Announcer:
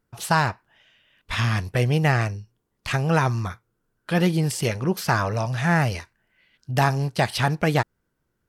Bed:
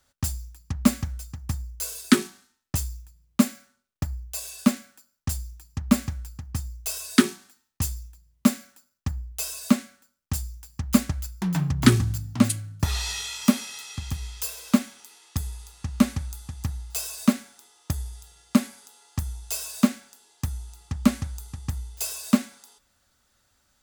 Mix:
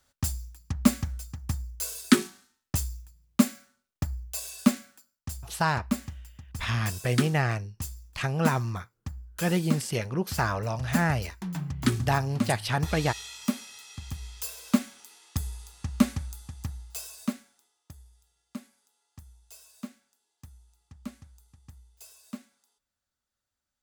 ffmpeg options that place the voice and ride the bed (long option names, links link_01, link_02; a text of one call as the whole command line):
ffmpeg -i stem1.wav -i stem2.wav -filter_complex "[0:a]adelay=5300,volume=-5.5dB[link_01];[1:a]volume=5dB,afade=type=out:start_time=4.97:duration=0.21:silence=0.446684,afade=type=in:start_time=13.75:duration=1.37:silence=0.473151,afade=type=out:start_time=15.92:duration=1.92:silence=0.125893[link_02];[link_01][link_02]amix=inputs=2:normalize=0" out.wav